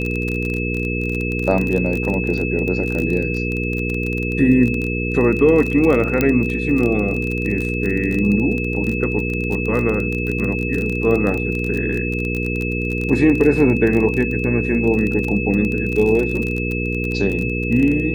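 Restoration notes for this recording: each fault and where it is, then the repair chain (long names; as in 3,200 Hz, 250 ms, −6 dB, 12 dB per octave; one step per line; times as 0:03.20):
surface crackle 27 per second −21 dBFS
mains hum 60 Hz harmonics 8 −23 dBFS
whistle 2,600 Hz −25 dBFS
0:06.21: click −4 dBFS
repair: click removal
notch filter 2,600 Hz, Q 30
hum removal 60 Hz, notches 8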